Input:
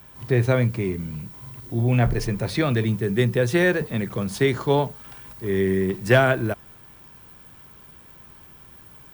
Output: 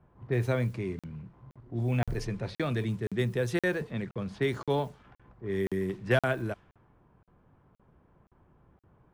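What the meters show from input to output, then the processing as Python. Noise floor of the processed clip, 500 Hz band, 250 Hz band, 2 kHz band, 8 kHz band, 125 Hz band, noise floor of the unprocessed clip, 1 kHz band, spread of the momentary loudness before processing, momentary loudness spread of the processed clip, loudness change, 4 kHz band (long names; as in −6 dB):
−66 dBFS, −9.0 dB, −9.0 dB, −9.0 dB, −12.0 dB, −9.0 dB, −48 dBFS, −9.5 dB, 14 LU, 11 LU, −9.0 dB, −9.5 dB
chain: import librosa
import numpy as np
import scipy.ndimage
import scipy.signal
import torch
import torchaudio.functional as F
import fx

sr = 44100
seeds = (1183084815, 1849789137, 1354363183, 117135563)

y = fx.env_lowpass(x, sr, base_hz=850.0, full_db=-17.0)
y = fx.buffer_crackle(y, sr, first_s=0.99, period_s=0.52, block=2048, kind='zero')
y = y * 10.0 ** (-8.5 / 20.0)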